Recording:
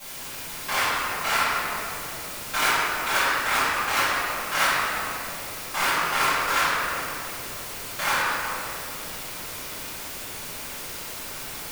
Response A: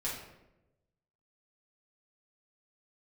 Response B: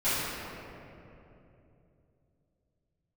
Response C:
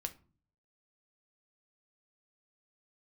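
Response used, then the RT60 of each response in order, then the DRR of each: B; 0.95, 2.9, 0.40 seconds; −7.0, −18.0, 6.5 decibels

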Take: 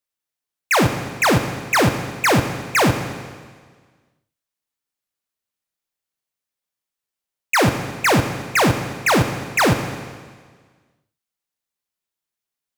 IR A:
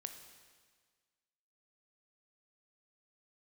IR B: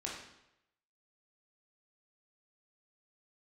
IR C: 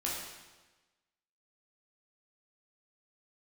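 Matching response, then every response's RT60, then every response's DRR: A; 1.6, 0.85, 1.2 seconds; 6.5, −3.5, −5.0 decibels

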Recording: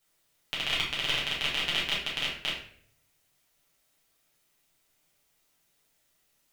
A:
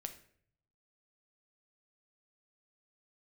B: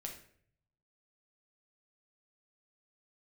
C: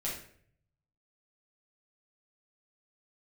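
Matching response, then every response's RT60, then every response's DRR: C; 0.60, 0.60, 0.60 seconds; 6.5, 0.5, −7.0 decibels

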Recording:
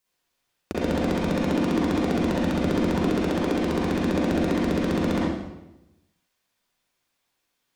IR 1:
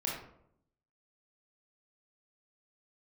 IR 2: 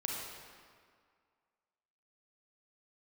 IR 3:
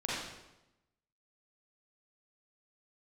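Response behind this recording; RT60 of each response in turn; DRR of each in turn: 3; 0.70, 2.0, 0.95 seconds; −4.0, −2.0, −7.5 decibels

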